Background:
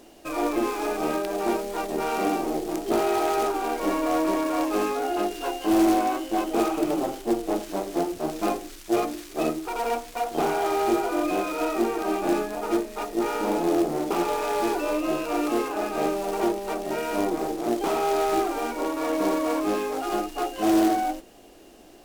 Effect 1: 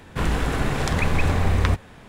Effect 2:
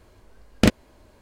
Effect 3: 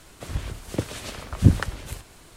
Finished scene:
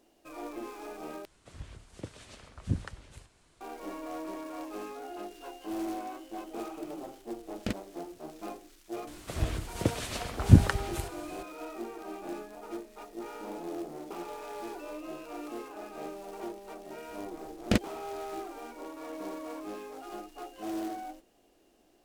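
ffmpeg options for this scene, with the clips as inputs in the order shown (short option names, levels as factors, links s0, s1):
-filter_complex "[3:a]asplit=2[s0][s1];[2:a]asplit=2[s2][s3];[0:a]volume=0.168[s4];[s0]lowpass=f=10000:w=0.5412,lowpass=f=10000:w=1.3066[s5];[s4]asplit=2[s6][s7];[s6]atrim=end=1.254[s8];[s5]atrim=end=2.36,asetpts=PTS-STARTPTS,volume=0.178[s9];[s7]atrim=start=3.606[s10];[s2]atrim=end=1.21,asetpts=PTS-STARTPTS,volume=0.15,afade=t=in:d=0.004:c=hsin,afade=t=out:st=1.206:d=0.004:c=hsin,adelay=7030[s11];[s1]atrim=end=2.36,asetpts=PTS-STARTPTS,volume=0.891,afade=t=in:d=0.004:c=hsin,afade=t=out:st=2.356:d=0.004:c=hsin,adelay=9070[s12];[s3]atrim=end=1.21,asetpts=PTS-STARTPTS,volume=0.376,afade=t=in:d=0.004:c=hsin,afade=t=out:st=1.206:d=0.004:c=hsin,adelay=17080[s13];[s8][s9]acrossfade=d=0.004:c1=hsin:c2=hsin[s14];[s14][s10]acrossfade=d=0.004:c1=hsin:c2=hsin[s15];[s15][s11][s12][s13]amix=inputs=4:normalize=0"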